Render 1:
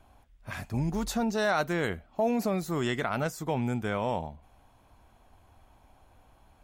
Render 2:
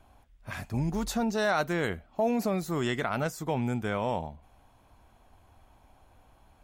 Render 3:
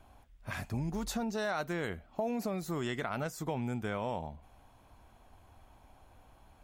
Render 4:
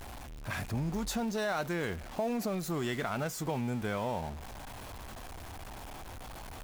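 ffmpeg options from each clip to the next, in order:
-af anull
-af "acompressor=threshold=-34dB:ratio=2.5"
-af "aeval=exprs='val(0)+0.5*0.01*sgn(val(0))':c=same"

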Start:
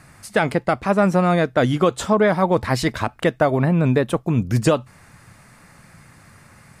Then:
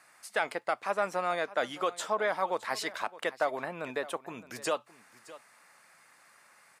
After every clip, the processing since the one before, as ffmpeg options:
-af "highpass=630,aecho=1:1:615:0.126,volume=-8.5dB"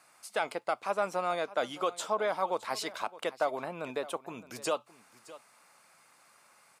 -af "equalizer=f=1.8k:w=3.7:g=-9"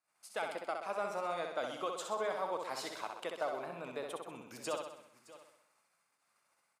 -filter_complex "[0:a]agate=range=-21dB:threshold=-60dB:ratio=16:detection=peak,asplit=2[a][b];[b]aecho=0:1:64|128|192|256|320|384|448:0.562|0.309|0.17|0.0936|0.0515|0.0283|0.0156[c];[a][c]amix=inputs=2:normalize=0,volume=-7.5dB"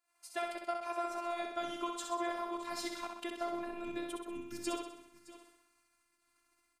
-af "asubboost=boost=11:cutoff=190,afftfilt=real='hypot(re,im)*cos(PI*b)':imag='0':win_size=512:overlap=0.75,volume=5dB"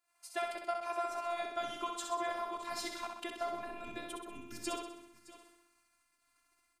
-af "bandreject=f=86.11:t=h:w=4,bandreject=f=172.22:t=h:w=4,bandreject=f=258.33:t=h:w=4,bandreject=f=344.44:t=h:w=4,bandreject=f=430.55:t=h:w=4,volume=1dB"

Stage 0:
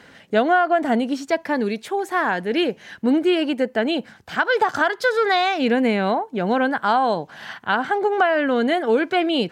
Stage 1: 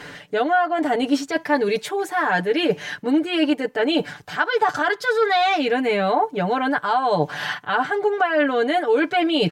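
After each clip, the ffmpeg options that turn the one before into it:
-af "equalizer=f=250:w=3.8:g=-5.5,areverse,acompressor=threshold=-28dB:ratio=6,areverse,aecho=1:1:6.8:0.94,volume=8dB"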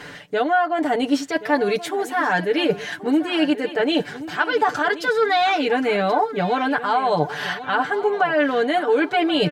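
-af "aecho=1:1:1079|2158|3237:0.188|0.0622|0.0205"

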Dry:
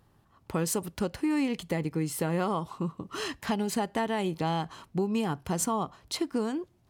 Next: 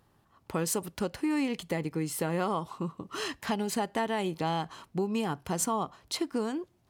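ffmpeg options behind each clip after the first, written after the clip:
-af "lowshelf=f=190:g=-5.5"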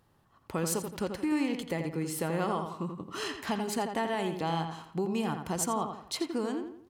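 -filter_complex "[0:a]asplit=2[a][b];[b]adelay=85,lowpass=f=3.4k:p=1,volume=-6.5dB,asplit=2[c][d];[d]adelay=85,lowpass=f=3.4k:p=1,volume=0.4,asplit=2[e][f];[f]adelay=85,lowpass=f=3.4k:p=1,volume=0.4,asplit=2[g][h];[h]adelay=85,lowpass=f=3.4k:p=1,volume=0.4,asplit=2[i][j];[j]adelay=85,lowpass=f=3.4k:p=1,volume=0.4[k];[a][c][e][g][i][k]amix=inputs=6:normalize=0,volume=-1.5dB"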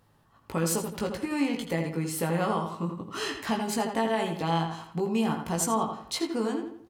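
-af "bandreject=f=360:w=12,aecho=1:1:18|76:0.596|0.168,volume=2dB"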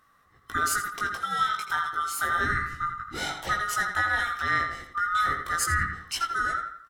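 -af "afftfilt=real='real(if(lt(b,960),b+48*(1-2*mod(floor(b/48),2)),b),0)':imag='imag(if(lt(b,960),b+48*(1-2*mod(floor(b/48),2)),b),0)':win_size=2048:overlap=0.75,volume=1dB"

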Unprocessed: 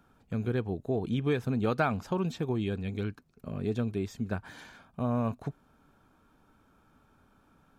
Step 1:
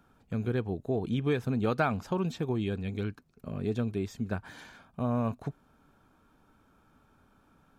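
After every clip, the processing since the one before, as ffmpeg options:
-af anull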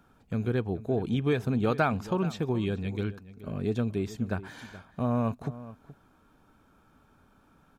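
-filter_complex "[0:a]asplit=2[a][b];[b]adelay=425.7,volume=-16dB,highshelf=f=4k:g=-9.58[c];[a][c]amix=inputs=2:normalize=0,volume=2dB"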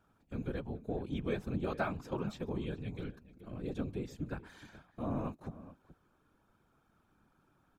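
-af "afftfilt=real='hypot(re,im)*cos(2*PI*random(0))':imag='hypot(re,im)*sin(2*PI*random(1))':win_size=512:overlap=0.75,volume=-3.5dB"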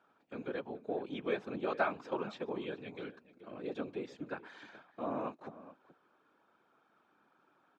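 -af "highpass=370,lowpass=3.8k,volume=4dB"

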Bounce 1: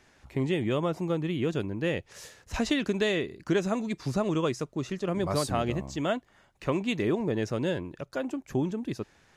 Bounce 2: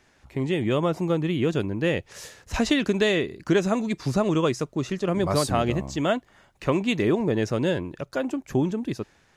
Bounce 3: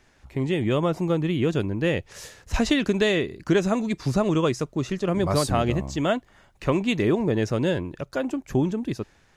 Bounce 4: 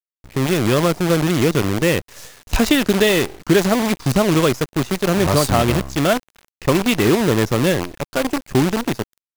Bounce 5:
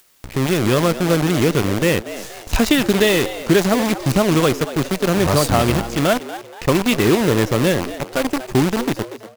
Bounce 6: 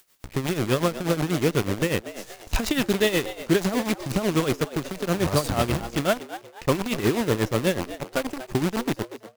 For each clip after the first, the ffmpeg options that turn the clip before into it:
-af "dynaudnorm=f=120:g=9:m=5dB"
-af "lowshelf=f=63:g=9.5"
-af "acrusher=bits=5:dc=4:mix=0:aa=0.000001,volume=6dB"
-filter_complex "[0:a]acompressor=mode=upward:threshold=-24dB:ratio=2.5,asplit=5[a][b][c][d][e];[b]adelay=238,afreqshift=110,volume=-14dB[f];[c]adelay=476,afreqshift=220,volume=-22.6dB[g];[d]adelay=714,afreqshift=330,volume=-31.3dB[h];[e]adelay=952,afreqshift=440,volume=-39.9dB[i];[a][f][g][h][i]amix=inputs=5:normalize=0"
-af "tremolo=f=8.2:d=0.75,volume=-4dB"

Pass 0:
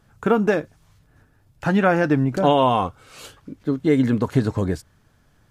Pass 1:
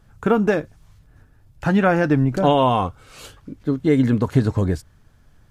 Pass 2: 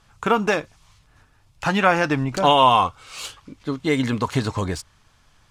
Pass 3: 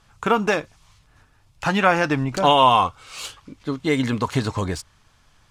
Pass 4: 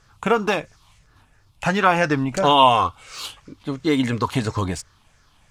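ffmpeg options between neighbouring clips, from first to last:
-af "lowshelf=f=79:g=11.5"
-af "aexciter=amount=4.3:drive=6.7:freq=2.2k,adynamicsmooth=sensitivity=2:basefreq=7.7k,equalizer=f=1.1k:t=o:w=1.4:g=13.5,volume=-6.5dB"
-af anull
-af "afftfilt=real='re*pow(10,7/40*sin(2*PI*(0.54*log(max(b,1)*sr/1024/100)/log(2)-(-2.9)*(pts-256)/sr)))':imag='im*pow(10,7/40*sin(2*PI*(0.54*log(max(b,1)*sr/1024/100)/log(2)-(-2.9)*(pts-256)/sr)))':win_size=1024:overlap=0.75"

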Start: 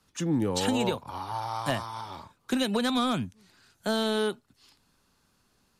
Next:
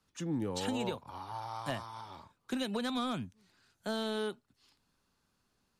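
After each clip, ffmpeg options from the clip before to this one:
-af "highshelf=f=8.5k:g=-4,volume=-8dB"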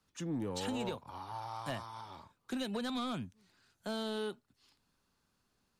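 -af "asoftclip=type=tanh:threshold=-27.5dB,volume=-1dB"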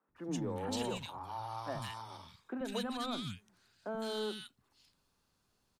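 -filter_complex "[0:a]acrossover=split=230|1700[a][b][c];[a]adelay=80[d];[c]adelay=160[e];[d][b][e]amix=inputs=3:normalize=0,volume=1.5dB"

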